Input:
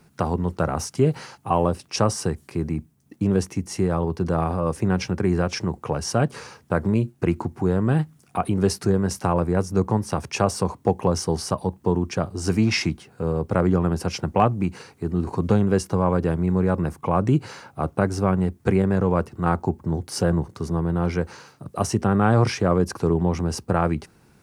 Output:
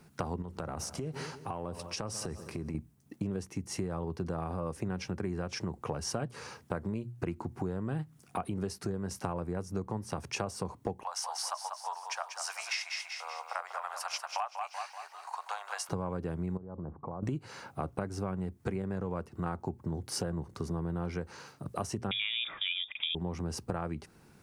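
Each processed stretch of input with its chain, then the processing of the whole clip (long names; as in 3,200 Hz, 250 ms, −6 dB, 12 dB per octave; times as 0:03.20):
0:00.42–0:02.75: echo machine with several playback heads 68 ms, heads second and third, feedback 44%, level −23.5 dB + downward compressor 5 to 1, threshold −30 dBFS
0:11.03–0:15.89: Butterworth high-pass 710 Hz 48 dB per octave + repeating echo 191 ms, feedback 47%, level −8 dB
0:16.57–0:17.23: downward compressor, threshold −33 dBFS + low-pass filter 1,100 Hz 24 dB per octave
0:22.11–0:23.15: parametric band 1,200 Hz +12 dB 0.37 octaves + voice inversion scrambler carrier 3,600 Hz
whole clip: mains-hum notches 60/120 Hz; downward compressor 6 to 1, threshold −29 dBFS; level −3 dB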